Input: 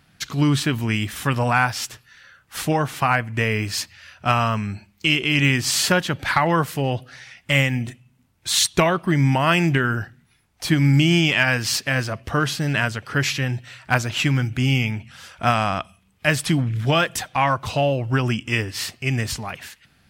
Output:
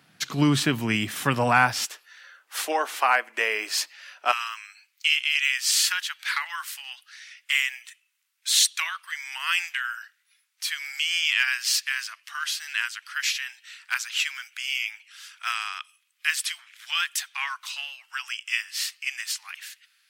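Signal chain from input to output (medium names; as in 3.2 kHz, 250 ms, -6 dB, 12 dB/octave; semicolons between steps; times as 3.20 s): Bessel high-pass 180 Hz, order 8, from 1.85 s 600 Hz, from 4.31 s 2.1 kHz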